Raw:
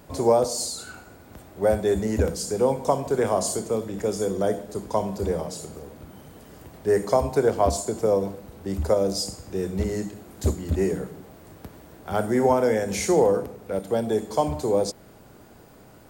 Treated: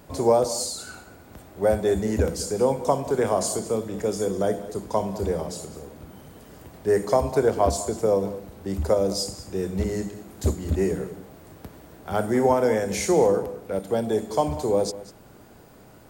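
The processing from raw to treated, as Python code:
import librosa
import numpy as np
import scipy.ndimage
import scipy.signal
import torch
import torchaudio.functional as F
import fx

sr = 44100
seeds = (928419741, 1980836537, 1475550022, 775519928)

y = x + 10.0 ** (-16.5 / 20.0) * np.pad(x, (int(198 * sr / 1000.0), 0))[:len(x)]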